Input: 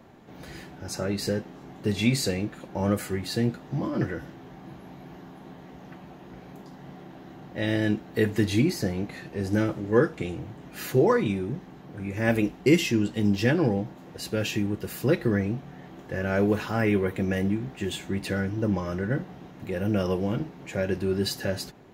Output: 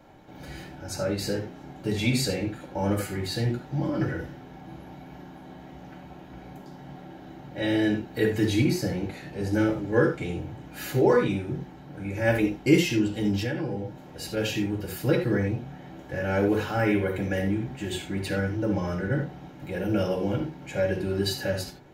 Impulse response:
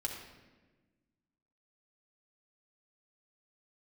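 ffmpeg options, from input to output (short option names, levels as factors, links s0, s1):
-filter_complex "[1:a]atrim=start_sample=2205,atrim=end_sample=4410[s0];[0:a][s0]afir=irnorm=-1:irlink=0,asettb=1/sr,asplit=3[s1][s2][s3];[s1]atrim=end=13.424[s4];[s2]atrim=start=13.42:end=14.37,asetpts=PTS-STARTPTS,afade=t=in:d=0.004:c=qsin,afade=t=out:st=0.946:d=0.004:c=qsin,acompressor=threshold=0.0398:ratio=4[s5];[s3]atrim=start=14.366[s6];[s4][s5]acrossfade=d=0.004:c1=hsin:c2=qsin[s7];[s7][s6]acrossfade=d=0.004:c1=qsin:c2=hsin"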